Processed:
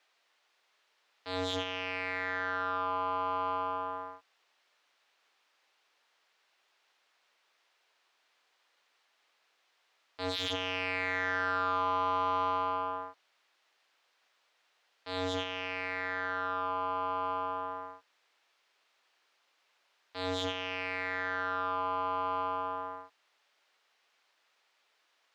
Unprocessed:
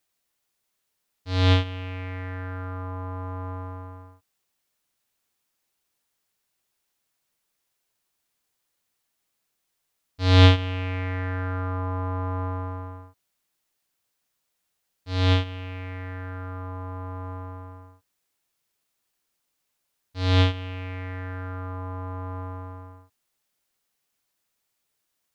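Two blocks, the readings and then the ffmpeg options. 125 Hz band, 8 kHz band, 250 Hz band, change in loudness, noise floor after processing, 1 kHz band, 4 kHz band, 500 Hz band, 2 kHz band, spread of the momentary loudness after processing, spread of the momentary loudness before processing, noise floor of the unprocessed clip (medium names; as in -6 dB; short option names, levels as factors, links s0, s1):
-26.0 dB, no reading, -11.5 dB, -6.5 dB, -74 dBFS, +3.5 dB, -6.5 dB, -3.0 dB, +0.5 dB, 10 LU, 17 LU, -78 dBFS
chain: -filter_complex "[0:a]aeval=exprs='0.106*(abs(mod(val(0)/0.106+3,4)-2)-1)':c=same,asplit=2[s0][s1];[s1]highpass=f=720:p=1,volume=8.91,asoftclip=type=tanh:threshold=0.112[s2];[s0][s2]amix=inputs=2:normalize=0,lowpass=f=3300:p=1,volume=0.501,acrossover=split=310 5500:gain=0.126 1 0.141[s3][s4][s5];[s3][s4][s5]amix=inputs=3:normalize=0"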